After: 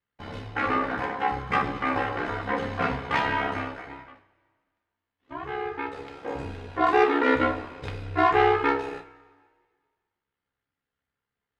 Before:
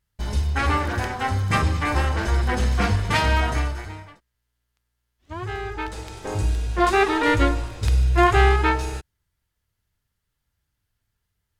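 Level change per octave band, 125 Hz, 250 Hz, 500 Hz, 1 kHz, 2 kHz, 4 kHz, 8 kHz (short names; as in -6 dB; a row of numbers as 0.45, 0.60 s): -15.0 dB, -3.0 dB, -1.0 dB, -1.5 dB, -3.0 dB, -7.5 dB, under -15 dB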